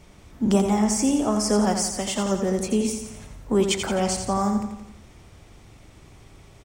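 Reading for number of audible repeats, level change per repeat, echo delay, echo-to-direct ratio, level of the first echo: 5, −5.5 dB, 86 ms, −5.5 dB, −7.0 dB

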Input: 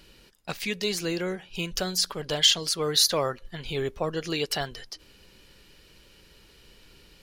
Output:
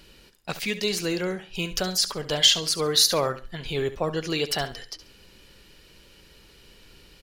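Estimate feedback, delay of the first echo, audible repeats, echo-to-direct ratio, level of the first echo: 24%, 69 ms, 2, −13.5 dB, −13.5 dB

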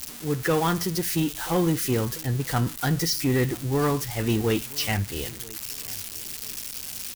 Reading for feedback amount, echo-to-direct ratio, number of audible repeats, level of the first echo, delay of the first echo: 34%, −21.5 dB, 2, −22.0 dB, 985 ms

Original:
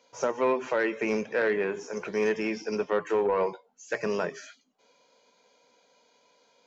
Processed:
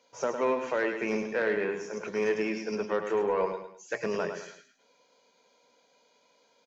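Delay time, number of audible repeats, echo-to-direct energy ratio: 105 ms, 3, −7.0 dB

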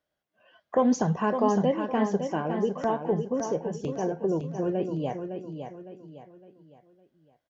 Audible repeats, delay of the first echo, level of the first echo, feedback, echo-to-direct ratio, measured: 4, 559 ms, −7.5 dB, 38%, −7.0 dB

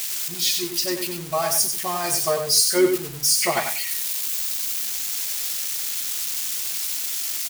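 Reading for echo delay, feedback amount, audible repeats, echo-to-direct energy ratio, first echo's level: 95 ms, 17%, 2, −6.5 dB, −6.5 dB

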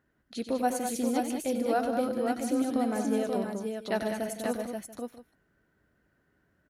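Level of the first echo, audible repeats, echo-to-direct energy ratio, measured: −9.5 dB, 5, −1.5 dB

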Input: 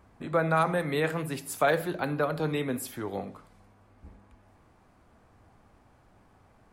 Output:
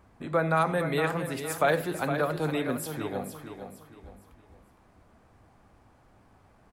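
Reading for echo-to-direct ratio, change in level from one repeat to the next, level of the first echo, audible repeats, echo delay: −8.0 dB, −9.5 dB, −8.5 dB, 3, 462 ms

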